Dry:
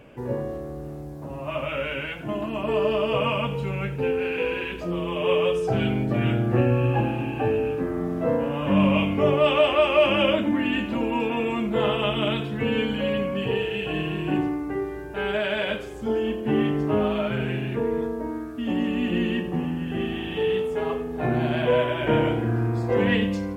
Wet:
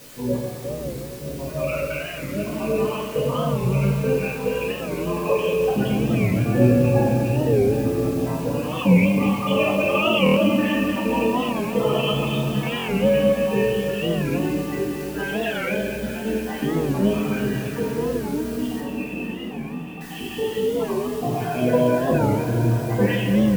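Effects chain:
time-frequency cells dropped at random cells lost 55%
high-pass filter 66 Hz
spectral peaks only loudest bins 32
in parallel at −7 dB: bit-depth reduction 6 bits, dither triangular
0:18.80–0:20.01: on the sum: Chebyshev low-pass with heavy ripple 3,600 Hz, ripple 9 dB
on a send: delay that swaps between a low-pass and a high-pass 117 ms, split 1,100 Hz, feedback 88%, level −9 dB
on the sum: rectangular room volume 360 cubic metres, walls mixed, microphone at 1.9 metres
buffer that repeats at 0:10.25/0:12.78, samples 1,024, times 4
wow of a warped record 45 rpm, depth 160 cents
level −5 dB

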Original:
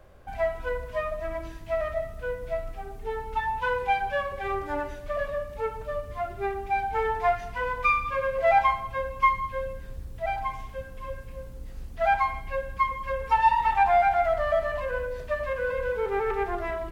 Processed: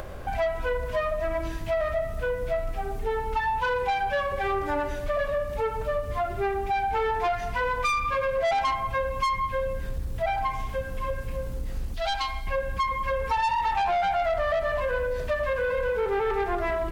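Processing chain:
in parallel at +0.5 dB: upward compression, threshold −27 dBFS
on the sum: soft clipping −17 dBFS, distortion −10 dB
0:11.94–0:12.47: graphic EQ with 10 bands 125 Hz −11 dB, 250 Hz −4 dB, 500 Hz −7 dB, 1,000 Hz −5 dB, 2,000 Hz −6 dB, 4,000 Hz +8 dB
downward compressor, threshold −23 dBFS, peak gain reduction 5 dB

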